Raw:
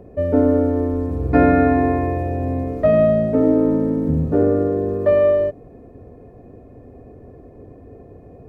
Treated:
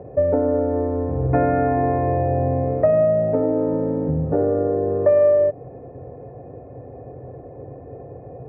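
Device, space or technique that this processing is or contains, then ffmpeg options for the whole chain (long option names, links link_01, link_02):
bass amplifier: -af "acompressor=threshold=-22dB:ratio=3,highpass=67,equalizer=frequency=130:width_type=q:width=4:gain=10,equalizer=frequency=220:width_type=q:width=4:gain=-7,equalizer=frequency=530:width_type=q:width=4:gain=8,equalizer=frequency=800:width_type=q:width=4:gain=9,lowpass=frequency=2200:width=0.5412,lowpass=frequency=2200:width=1.3066,volume=1.5dB"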